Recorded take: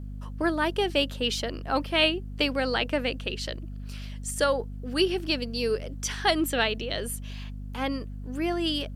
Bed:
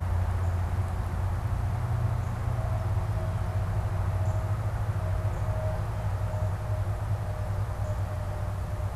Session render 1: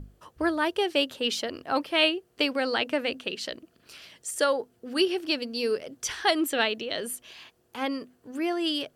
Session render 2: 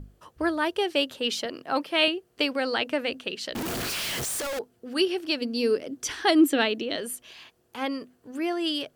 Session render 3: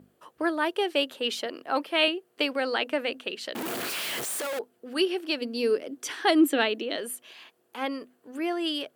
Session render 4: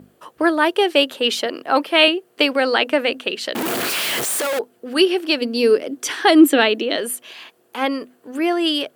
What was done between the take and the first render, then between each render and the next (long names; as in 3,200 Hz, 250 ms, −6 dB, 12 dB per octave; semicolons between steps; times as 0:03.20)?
mains-hum notches 50/100/150/200/250 Hz
0:01.45–0:02.08: high-pass filter 120 Hz 24 dB per octave; 0:03.55–0:04.59: sign of each sample alone; 0:05.41–0:06.96: parametric band 290 Hz +10.5 dB
high-pass filter 260 Hz 12 dB per octave; parametric band 5,600 Hz −5.5 dB 0.92 octaves
level +10 dB; brickwall limiter −1 dBFS, peak gain reduction 2.5 dB